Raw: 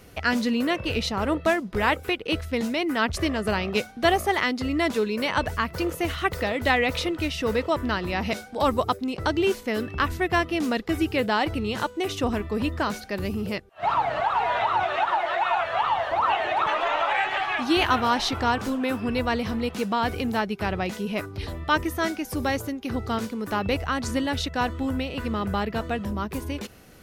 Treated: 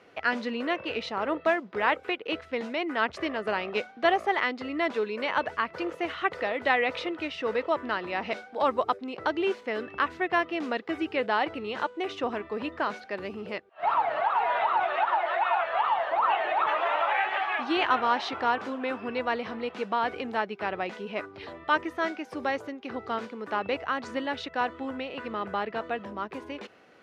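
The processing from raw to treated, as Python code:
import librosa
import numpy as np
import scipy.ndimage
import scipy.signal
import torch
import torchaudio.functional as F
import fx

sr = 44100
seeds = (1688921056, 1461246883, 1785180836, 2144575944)

y = fx.bandpass_edges(x, sr, low_hz=120.0, high_hz=6500.0)
y = fx.bass_treble(y, sr, bass_db=-15, treble_db=-14)
y = F.gain(torch.from_numpy(y), -1.5).numpy()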